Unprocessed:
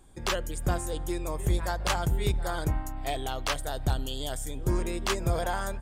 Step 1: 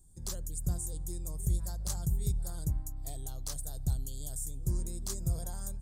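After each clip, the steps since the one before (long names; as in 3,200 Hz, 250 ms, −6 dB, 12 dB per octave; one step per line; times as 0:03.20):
drawn EQ curve 170 Hz 0 dB, 260 Hz −10 dB, 2,800 Hz −25 dB, 4,100 Hz −8 dB, 7,700 Hz +4 dB
level −3.5 dB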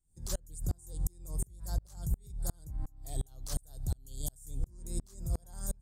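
downward compressor 2.5 to 1, threshold −32 dBFS, peak gain reduction 5.5 dB
brickwall limiter −33 dBFS, peak gain reduction 11.5 dB
tremolo with a ramp in dB swelling 2.8 Hz, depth 35 dB
level +12.5 dB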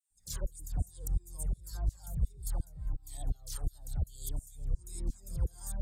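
all-pass dispersion lows, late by 106 ms, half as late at 1,400 Hz
flanger whose copies keep moving one way falling 1.6 Hz
level +2.5 dB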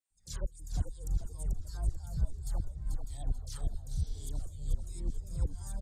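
high-frequency loss of the air 52 metres
echo with shifted repeats 438 ms, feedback 33%, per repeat −59 Hz, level −6 dB
healed spectral selection 0:03.96–0:04.25, 210–6,100 Hz both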